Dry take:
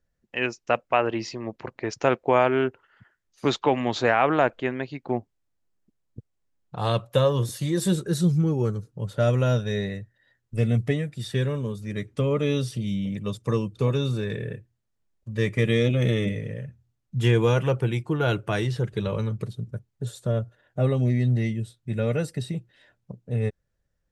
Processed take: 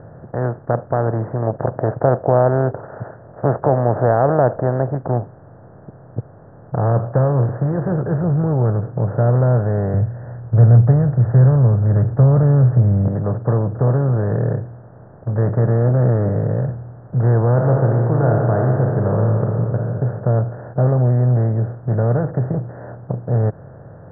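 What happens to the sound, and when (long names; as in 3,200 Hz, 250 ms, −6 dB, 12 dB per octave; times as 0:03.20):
0:01.42–0:04.95: parametric band 610 Hz +12 dB 0.99 octaves
0:09.94–0:13.08: low shelf with overshoot 190 Hz +14 dB, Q 1.5
0:17.52–0:19.88: thrown reverb, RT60 1.1 s, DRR 3.5 dB
whole clip: compressor on every frequency bin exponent 0.4; Butterworth low-pass 1,700 Hz 72 dB per octave; parametric band 170 Hz +6 dB 2.6 octaves; level −9 dB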